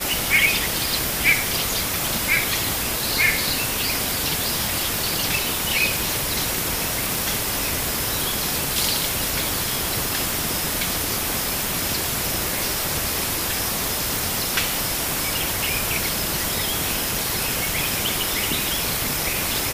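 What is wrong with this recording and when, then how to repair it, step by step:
0:07.15: click
0:14.16: click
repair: click removal

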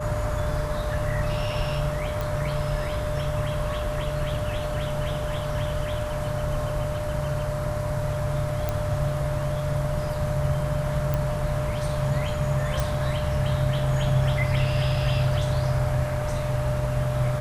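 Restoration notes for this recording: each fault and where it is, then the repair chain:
whistle 600 Hz −30 dBFS
0:02.21: click
0:08.69: click −12 dBFS
0:11.14: click
0:12.80: click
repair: click removal
notch filter 600 Hz, Q 30

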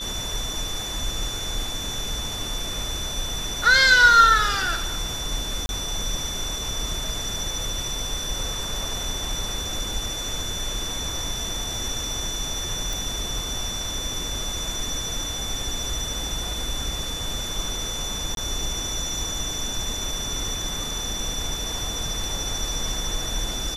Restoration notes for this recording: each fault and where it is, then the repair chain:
whistle 3,500 Hz −31 dBFS
0:05.66–0:05.69: drop-out 31 ms
0:12.93: click
0:18.35–0:18.37: drop-out 22 ms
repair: click removal
notch filter 3,500 Hz, Q 30
repair the gap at 0:05.66, 31 ms
repair the gap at 0:18.35, 22 ms

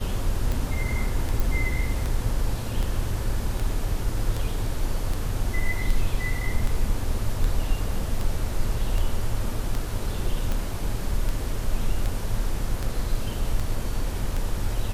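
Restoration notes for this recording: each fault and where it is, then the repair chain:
scratch tick 78 rpm
0:01.40: click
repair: click removal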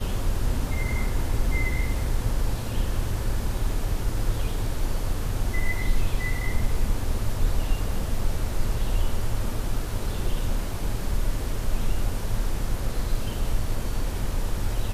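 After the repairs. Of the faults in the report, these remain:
none of them is left

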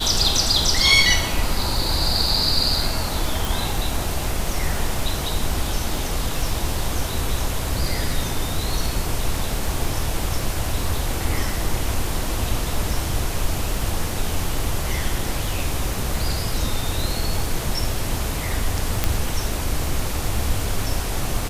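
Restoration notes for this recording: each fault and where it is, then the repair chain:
surface crackle 39 per second −28 dBFS
0:03.45: click
0:19.04: click −4 dBFS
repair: click removal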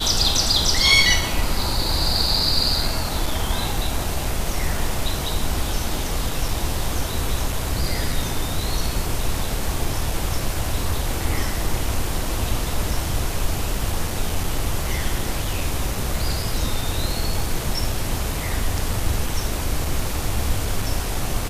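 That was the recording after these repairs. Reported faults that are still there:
0:03.45: click

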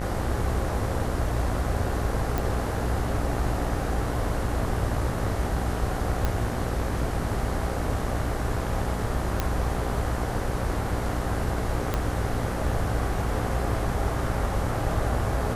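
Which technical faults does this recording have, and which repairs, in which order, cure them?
mains buzz 60 Hz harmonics 33 −31 dBFS
0:02.38: click
0:06.25: click −12 dBFS
0:09.40: click −10 dBFS
0:11.94: click −11 dBFS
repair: click removal
hum removal 60 Hz, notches 33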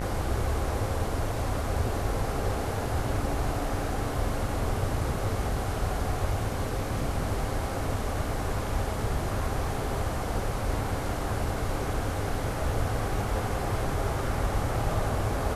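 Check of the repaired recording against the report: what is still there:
0:11.94: click

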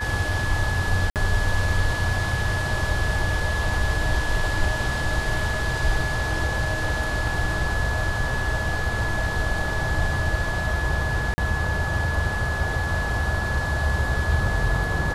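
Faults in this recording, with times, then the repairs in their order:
whistle 1,700 Hz −28 dBFS
0:01.10–0:01.16: drop-out 58 ms
0:11.34–0:11.38: drop-out 40 ms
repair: notch filter 1,700 Hz, Q 30
repair the gap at 0:01.10, 58 ms
repair the gap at 0:11.34, 40 ms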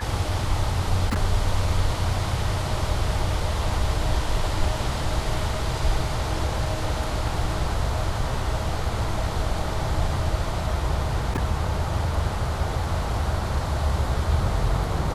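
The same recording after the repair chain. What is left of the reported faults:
none of them is left

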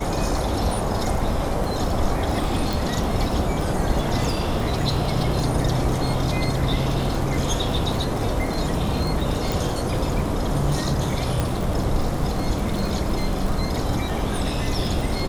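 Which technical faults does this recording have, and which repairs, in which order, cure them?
surface crackle 36 per second −25 dBFS
0:02.73: click
0:09.52: click
0:11.40: click −9 dBFS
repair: click removal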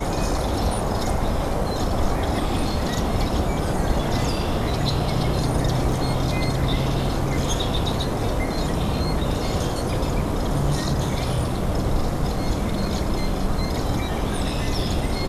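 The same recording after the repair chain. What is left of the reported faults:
0:11.40: click

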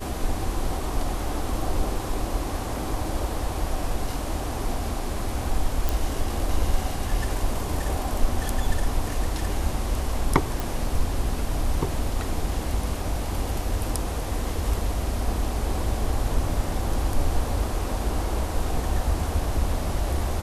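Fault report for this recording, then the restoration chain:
0:05.89: click
0:10.60: click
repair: click removal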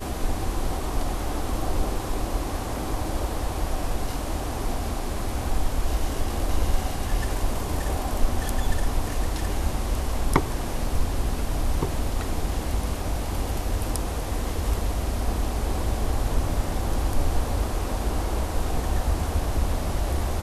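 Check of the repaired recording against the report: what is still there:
none of them is left

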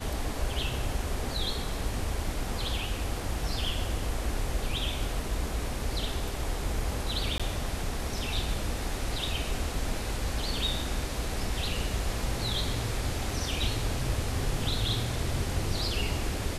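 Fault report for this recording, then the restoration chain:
0:07.38–0:07.40: drop-out 16 ms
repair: repair the gap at 0:07.38, 16 ms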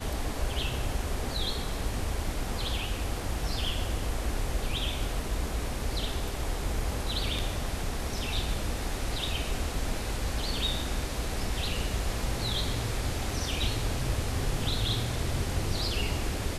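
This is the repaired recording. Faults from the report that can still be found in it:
none of them is left

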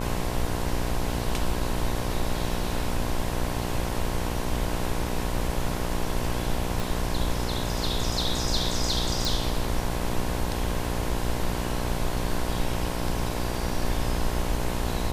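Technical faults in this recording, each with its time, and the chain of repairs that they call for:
mains buzz 60 Hz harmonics 18 −31 dBFS
0:06.80: click
0:09.25: click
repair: click removal
hum removal 60 Hz, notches 18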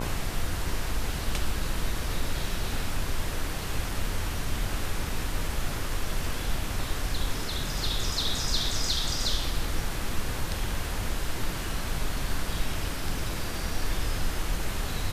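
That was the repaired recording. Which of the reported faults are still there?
none of them is left

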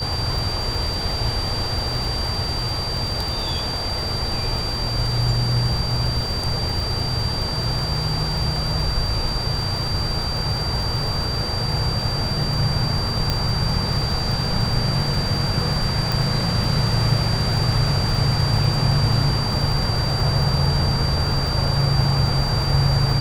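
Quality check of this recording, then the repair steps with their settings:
surface crackle 42 per second −26 dBFS
whistle 4,700 Hz −26 dBFS
0:13.30: click −7 dBFS
0:16.12: click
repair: click removal
notch filter 4,700 Hz, Q 30

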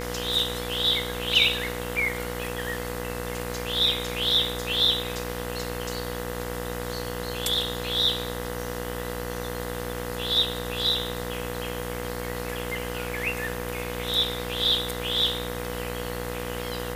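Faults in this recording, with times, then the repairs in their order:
mains buzz 60 Hz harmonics 34 −34 dBFS
whistle 490 Hz −35 dBFS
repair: notch filter 490 Hz, Q 30
hum removal 60 Hz, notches 34

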